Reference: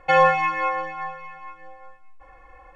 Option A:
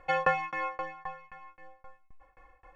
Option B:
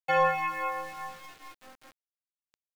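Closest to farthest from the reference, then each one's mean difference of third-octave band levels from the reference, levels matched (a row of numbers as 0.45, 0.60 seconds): A, B; 3.0, 7.0 decibels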